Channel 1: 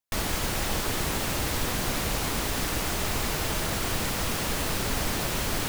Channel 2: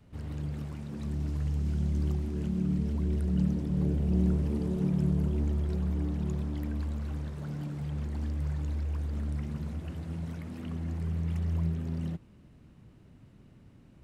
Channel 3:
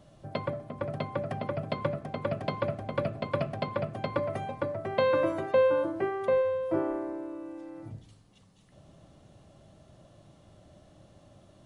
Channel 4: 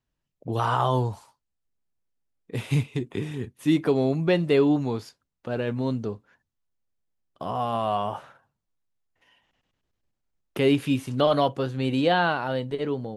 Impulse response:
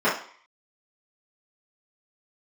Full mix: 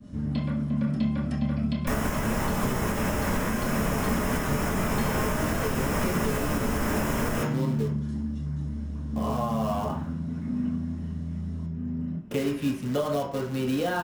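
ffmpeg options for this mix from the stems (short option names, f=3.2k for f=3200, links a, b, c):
-filter_complex "[0:a]equalizer=f=4.2k:t=o:w=0.76:g=-11.5,adelay=1750,volume=1dB,asplit=2[a][b];[b]volume=-9dB[c];[1:a]lowshelf=f=330:t=q:w=1.5:g=8,acompressor=threshold=-31dB:ratio=6,volume=-6.5dB,asplit=2[d][e];[e]volume=-6.5dB[f];[2:a]firequalizer=gain_entry='entry(140,0);entry(220,14);entry(380,-11);entry(4200,9)':delay=0.05:min_phase=1,acompressor=threshold=-32dB:ratio=6,adynamicequalizer=threshold=0.00178:dfrequency=1800:dqfactor=0.7:tfrequency=1800:tqfactor=0.7:attack=5:release=100:ratio=0.375:range=3:mode=boostabove:tftype=highshelf,volume=-5dB,asplit=2[g][h];[h]volume=-9.5dB[i];[3:a]equalizer=f=370:t=o:w=0.43:g=6,acompressor=threshold=-21dB:ratio=3,acrusher=bits=3:mode=log:mix=0:aa=0.000001,adelay=1750,volume=-5.5dB,asplit=2[j][k];[k]volume=-15.5dB[l];[4:a]atrim=start_sample=2205[m];[c][f][i][l]amix=inputs=4:normalize=0[n];[n][m]afir=irnorm=-1:irlink=0[o];[a][d][g][j][o]amix=inputs=5:normalize=0,acrossover=split=210|3000[p][q][r];[q]acompressor=threshold=-23dB:ratio=6[s];[p][s][r]amix=inputs=3:normalize=0,alimiter=limit=-16dB:level=0:latency=1:release=392"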